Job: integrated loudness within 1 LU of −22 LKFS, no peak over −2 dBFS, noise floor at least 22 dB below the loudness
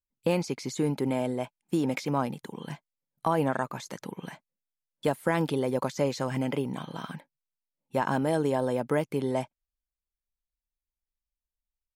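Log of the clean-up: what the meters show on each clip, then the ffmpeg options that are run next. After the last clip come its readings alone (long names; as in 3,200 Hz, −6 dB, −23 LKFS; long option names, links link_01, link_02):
integrated loudness −30.0 LKFS; sample peak −14.5 dBFS; target loudness −22.0 LKFS
→ -af "volume=8dB"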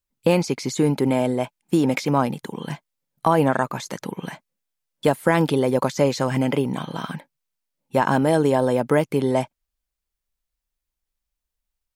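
integrated loudness −22.0 LKFS; sample peak −6.5 dBFS; background noise floor −84 dBFS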